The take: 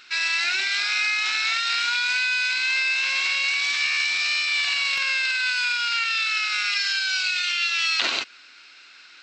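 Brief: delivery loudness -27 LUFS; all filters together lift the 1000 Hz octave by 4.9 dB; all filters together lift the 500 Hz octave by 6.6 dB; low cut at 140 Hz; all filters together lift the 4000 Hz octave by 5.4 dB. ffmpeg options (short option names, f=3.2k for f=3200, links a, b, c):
-af "highpass=140,equalizer=f=500:t=o:g=6.5,equalizer=f=1k:t=o:g=6,equalizer=f=4k:t=o:g=6,volume=-10dB"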